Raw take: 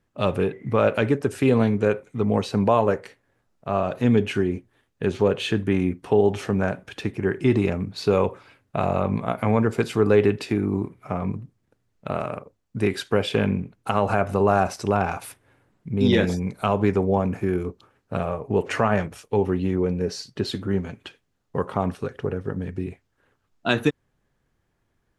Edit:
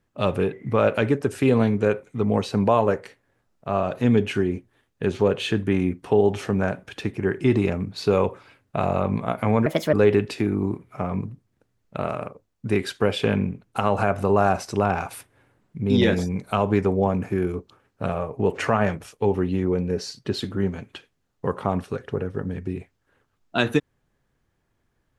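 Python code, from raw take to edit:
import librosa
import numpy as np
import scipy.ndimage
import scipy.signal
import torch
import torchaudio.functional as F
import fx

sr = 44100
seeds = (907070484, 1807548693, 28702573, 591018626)

y = fx.edit(x, sr, fx.speed_span(start_s=9.66, length_s=0.38, speed=1.4), tone=tone)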